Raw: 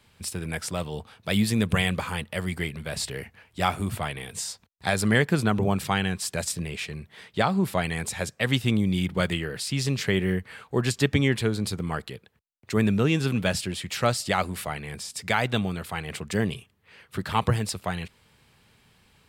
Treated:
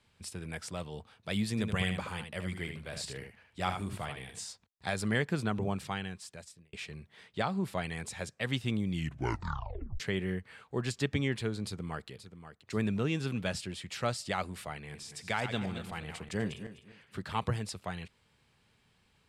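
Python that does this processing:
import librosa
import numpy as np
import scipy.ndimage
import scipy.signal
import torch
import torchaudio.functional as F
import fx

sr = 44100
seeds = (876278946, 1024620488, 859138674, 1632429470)

y = fx.echo_single(x, sr, ms=76, db=-7.0, at=(1.57, 4.43), fade=0.02)
y = fx.echo_throw(y, sr, start_s=11.65, length_s=0.44, ms=530, feedback_pct=35, wet_db=-11.5)
y = fx.reverse_delay_fb(y, sr, ms=126, feedback_pct=47, wet_db=-9, at=(14.78, 17.19))
y = fx.edit(y, sr, fx.fade_out_span(start_s=5.68, length_s=1.05),
    fx.tape_stop(start_s=8.9, length_s=1.1), tone=tone)
y = scipy.signal.sosfilt(scipy.signal.butter(2, 9600.0, 'lowpass', fs=sr, output='sos'), y)
y = F.gain(torch.from_numpy(y), -9.0).numpy()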